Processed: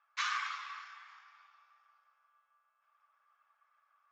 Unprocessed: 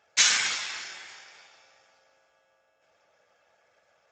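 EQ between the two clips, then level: ladder high-pass 1100 Hz, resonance 85%; air absorption 190 m; 0.0 dB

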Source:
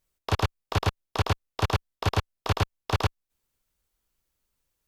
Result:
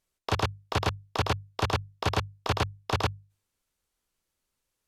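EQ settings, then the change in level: LPF 12000 Hz 12 dB/oct; low shelf 66 Hz -7.5 dB; notches 50/100/150 Hz; 0.0 dB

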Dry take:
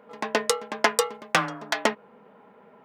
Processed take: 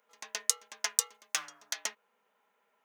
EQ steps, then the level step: differentiator; bell 6300 Hz +8 dB 0.34 oct; -2.5 dB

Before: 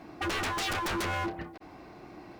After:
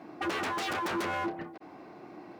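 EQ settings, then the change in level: HPF 180 Hz 12 dB/oct; high shelf 2300 Hz -8 dB; +1.5 dB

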